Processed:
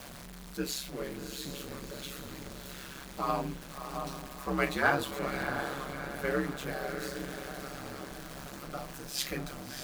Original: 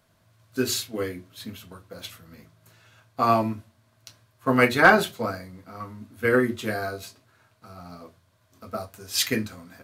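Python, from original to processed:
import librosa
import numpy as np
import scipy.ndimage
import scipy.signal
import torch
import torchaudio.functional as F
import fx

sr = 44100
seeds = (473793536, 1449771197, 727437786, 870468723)

y = x + 0.5 * 10.0 ** (-29.0 / 20.0) * np.sign(x)
y = fx.echo_diffused(y, sr, ms=671, feedback_pct=50, wet_db=-6.5)
y = y * np.sin(2.0 * np.pi * 68.0 * np.arange(len(y)) / sr)
y = F.gain(torch.from_numpy(y), -9.0).numpy()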